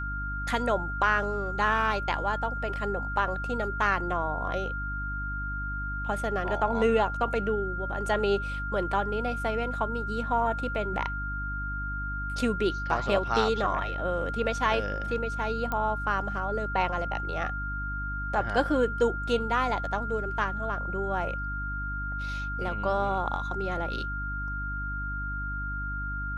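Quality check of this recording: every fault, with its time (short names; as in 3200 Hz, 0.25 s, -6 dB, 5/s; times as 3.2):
hum 50 Hz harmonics 6 -35 dBFS
tone 1400 Hz -33 dBFS
15.72 pop -17 dBFS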